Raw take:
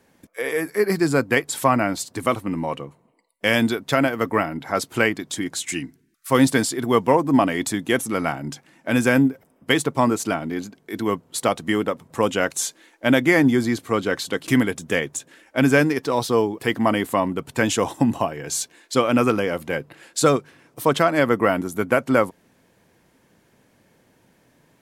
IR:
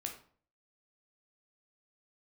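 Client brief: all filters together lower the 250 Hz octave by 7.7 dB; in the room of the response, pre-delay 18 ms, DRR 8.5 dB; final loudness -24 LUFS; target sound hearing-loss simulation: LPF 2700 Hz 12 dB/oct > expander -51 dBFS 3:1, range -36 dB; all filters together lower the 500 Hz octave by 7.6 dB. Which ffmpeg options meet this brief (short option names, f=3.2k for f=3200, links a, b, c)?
-filter_complex "[0:a]equalizer=f=250:t=o:g=-7,equalizer=f=500:t=o:g=-7.5,asplit=2[a][b];[1:a]atrim=start_sample=2205,adelay=18[c];[b][c]afir=irnorm=-1:irlink=0,volume=-7.5dB[d];[a][d]amix=inputs=2:normalize=0,lowpass=2.7k,agate=range=-36dB:threshold=-51dB:ratio=3,volume=2dB"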